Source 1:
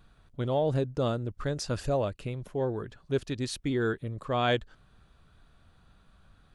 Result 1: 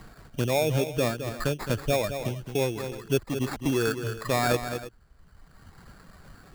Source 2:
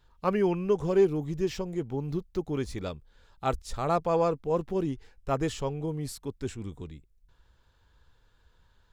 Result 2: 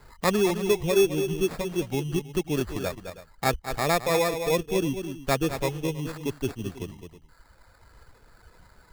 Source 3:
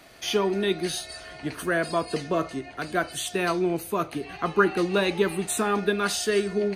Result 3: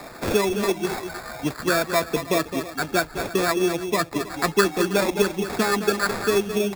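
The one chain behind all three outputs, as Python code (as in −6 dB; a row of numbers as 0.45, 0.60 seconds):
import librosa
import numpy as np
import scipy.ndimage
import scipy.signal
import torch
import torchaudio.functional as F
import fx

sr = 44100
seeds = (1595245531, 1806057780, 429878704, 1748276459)

p1 = fx.dereverb_blind(x, sr, rt60_s=1.5)
p2 = scipy.signal.sosfilt(scipy.signal.butter(2, 4400.0, 'lowpass', fs=sr, output='sos'), p1)
p3 = p2 + fx.echo_multitap(p2, sr, ms=(213, 320), db=(-10.5, -19.5), dry=0)
p4 = fx.sample_hold(p3, sr, seeds[0], rate_hz=3000.0, jitter_pct=0)
p5 = fx.band_squash(p4, sr, depth_pct=40)
y = p5 * 10.0 ** (4.0 / 20.0)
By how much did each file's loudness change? +3.0, +3.5, +3.0 LU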